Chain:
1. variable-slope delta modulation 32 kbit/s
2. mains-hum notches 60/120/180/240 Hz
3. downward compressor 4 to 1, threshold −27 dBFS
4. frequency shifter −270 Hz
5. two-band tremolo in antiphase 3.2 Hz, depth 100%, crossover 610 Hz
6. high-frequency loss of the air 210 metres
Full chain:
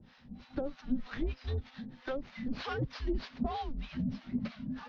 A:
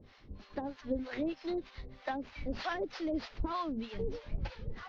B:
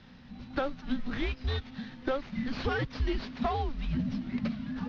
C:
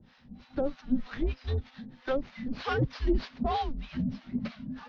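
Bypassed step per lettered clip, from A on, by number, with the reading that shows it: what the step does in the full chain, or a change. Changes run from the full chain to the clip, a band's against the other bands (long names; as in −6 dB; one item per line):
4, 125 Hz band −7.0 dB
5, change in integrated loudness +4.0 LU
3, average gain reduction 2.5 dB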